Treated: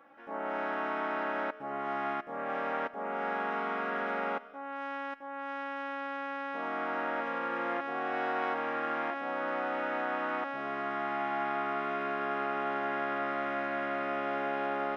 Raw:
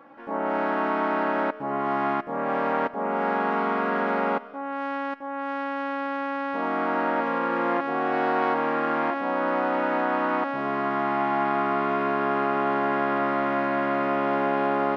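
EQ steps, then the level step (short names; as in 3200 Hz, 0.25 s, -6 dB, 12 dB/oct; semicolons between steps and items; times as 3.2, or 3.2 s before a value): low shelf 490 Hz -10 dB; notch 1000 Hz, Q 5.3; notch 4400 Hz, Q 7.3; -4.5 dB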